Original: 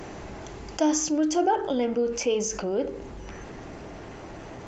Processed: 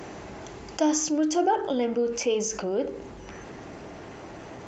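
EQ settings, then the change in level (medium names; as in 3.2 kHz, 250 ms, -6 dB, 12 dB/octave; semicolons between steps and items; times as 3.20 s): high-pass 100 Hz 6 dB/octave; 0.0 dB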